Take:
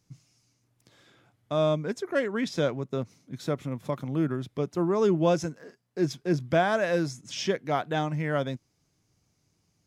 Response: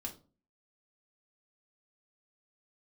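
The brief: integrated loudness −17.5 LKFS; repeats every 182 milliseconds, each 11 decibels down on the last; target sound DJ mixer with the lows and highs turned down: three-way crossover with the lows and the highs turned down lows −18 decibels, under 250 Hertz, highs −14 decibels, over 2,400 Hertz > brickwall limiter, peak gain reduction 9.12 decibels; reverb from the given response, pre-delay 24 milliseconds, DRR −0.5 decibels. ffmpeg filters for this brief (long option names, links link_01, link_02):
-filter_complex "[0:a]aecho=1:1:182|364|546:0.282|0.0789|0.0221,asplit=2[link_01][link_02];[1:a]atrim=start_sample=2205,adelay=24[link_03];[link_02][link_03]afir=irnorm=-1:irlink=0,volume=2.5dB[link_04];[link_01][link_04]amix=inputs=2:normalize=0,acrossover=split=250 2400:gain=0.126 1 0.2[link_05][link_06][link_07];[link_05][link_06][link_07]amix=inputs=3:normalize=0,volume=12dB,alimiter=limit=-7dB:level=0:latency=1"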